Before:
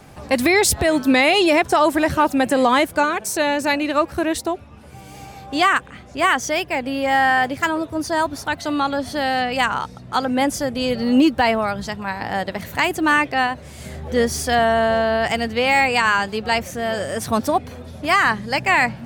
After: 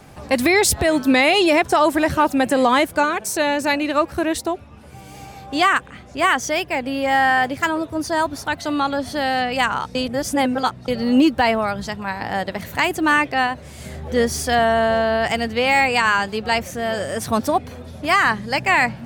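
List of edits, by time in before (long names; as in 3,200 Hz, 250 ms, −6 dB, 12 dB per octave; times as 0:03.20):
0:09.95–0:10.88: reverse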